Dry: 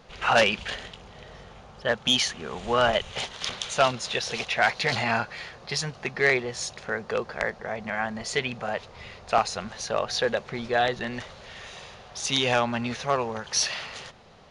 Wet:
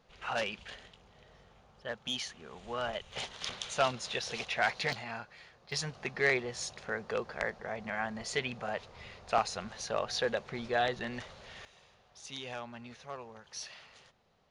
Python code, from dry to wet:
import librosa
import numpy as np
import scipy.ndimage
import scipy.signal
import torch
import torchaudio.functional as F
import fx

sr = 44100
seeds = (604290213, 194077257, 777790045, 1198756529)

y = fx.gain(x, sr, db=fx.steps((0.0, -14.0), (3.12, -7.5), (4.93, -16.0), (5.72, -6.5), (11.65, -18.5)))